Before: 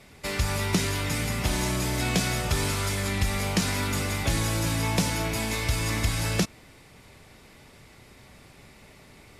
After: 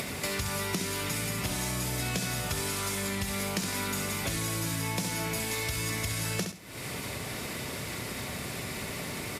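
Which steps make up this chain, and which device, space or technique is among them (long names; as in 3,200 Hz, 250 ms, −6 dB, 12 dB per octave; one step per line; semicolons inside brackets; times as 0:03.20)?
high-pass filter 84 Hz 12 dB per octave
high-shelf EQ 9,400 Hz +9 dB
notch filter 830 Hz, Q 15
repeating echo 66 ms, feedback 18%, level −7 dB
upward and downward compression (upward compression, threshold −32 dBFS; downward compressor 4 to 1, threshold −38 dBFS, peak gain reduction 16 dB)
level +6.5 dB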